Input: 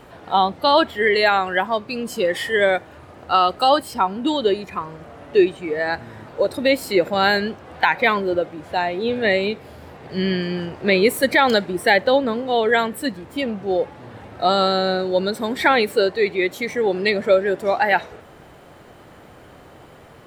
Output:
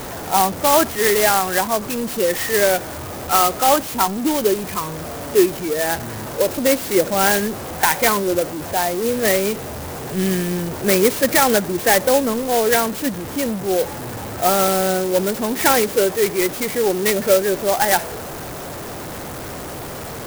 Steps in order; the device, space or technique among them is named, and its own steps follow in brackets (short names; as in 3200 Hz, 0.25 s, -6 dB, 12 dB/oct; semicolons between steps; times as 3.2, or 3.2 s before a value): early CD player with a faulty converter (zero-crossing step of -26 dBFS; clock jitter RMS 0.082 ms)